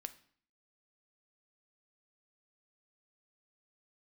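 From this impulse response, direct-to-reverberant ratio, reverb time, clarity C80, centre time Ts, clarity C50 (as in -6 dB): 10.0 dB, 0.55 s, 19.5 dB, 5 ms, 16.0 dB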